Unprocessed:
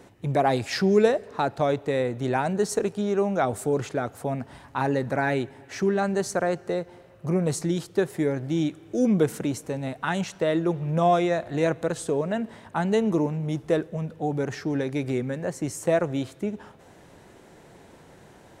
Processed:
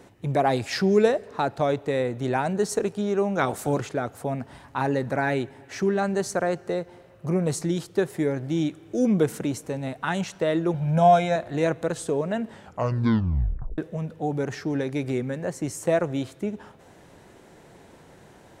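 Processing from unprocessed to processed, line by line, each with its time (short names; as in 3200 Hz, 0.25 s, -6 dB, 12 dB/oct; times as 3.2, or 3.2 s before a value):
3.37–3.79 spectral limiter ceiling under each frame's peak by 13 dB
10.74–11.36 comb 1.3 ms, depth 86%
12.49 tape stop 1.29 s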